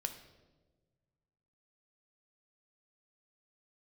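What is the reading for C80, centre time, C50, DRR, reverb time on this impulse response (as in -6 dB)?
12.5 dB, 14 ms, 10.0 dB, 6.5 dB, 1.3 s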